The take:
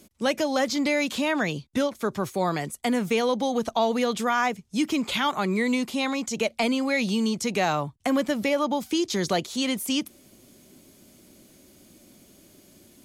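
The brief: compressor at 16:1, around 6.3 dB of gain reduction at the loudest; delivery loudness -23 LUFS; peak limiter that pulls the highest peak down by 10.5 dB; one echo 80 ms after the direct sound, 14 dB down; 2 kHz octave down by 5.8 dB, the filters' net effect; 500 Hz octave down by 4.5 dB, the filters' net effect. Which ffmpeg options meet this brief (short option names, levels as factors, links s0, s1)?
-af "equalizer=f=500:t=o:g=-5,equalizer=f=2000:t=o:g=-7,acompressor=threshold=0.0398:ratio=16,alimiter=level_in=1.5:limit=0.0631:level=0:latency=1,volume=0.668,aecho=1:1:80:0.2,volume=4.47"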